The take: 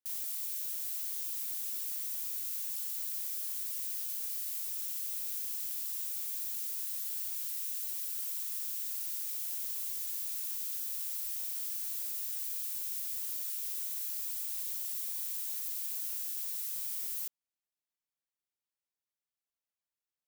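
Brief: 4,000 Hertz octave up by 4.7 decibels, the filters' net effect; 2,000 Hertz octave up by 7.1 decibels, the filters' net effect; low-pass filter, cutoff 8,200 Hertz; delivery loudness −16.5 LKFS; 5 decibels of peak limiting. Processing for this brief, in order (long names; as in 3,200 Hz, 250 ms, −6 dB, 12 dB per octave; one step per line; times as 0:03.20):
low-pass filter 8,200 Hz
parametric band 2,000 Hz +7.5 dB
parametric band 4,000 Hz +4.5 dB
level +28 dB
brickwall limiter −9.5 dBFS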